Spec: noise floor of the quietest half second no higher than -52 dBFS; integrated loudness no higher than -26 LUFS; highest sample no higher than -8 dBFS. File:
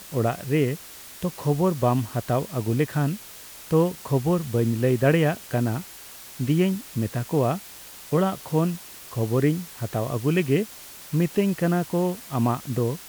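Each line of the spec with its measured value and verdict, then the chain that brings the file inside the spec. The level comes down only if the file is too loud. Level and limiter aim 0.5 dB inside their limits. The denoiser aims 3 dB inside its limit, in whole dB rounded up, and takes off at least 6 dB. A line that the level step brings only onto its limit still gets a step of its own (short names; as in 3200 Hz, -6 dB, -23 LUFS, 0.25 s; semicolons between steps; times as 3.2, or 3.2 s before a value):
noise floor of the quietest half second -43 dBFS: fail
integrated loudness -25.0 LUFS: fail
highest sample -8.5 dBFS: OK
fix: denoiser 11 dB, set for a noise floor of -43 dBFS; gain -1.5 dB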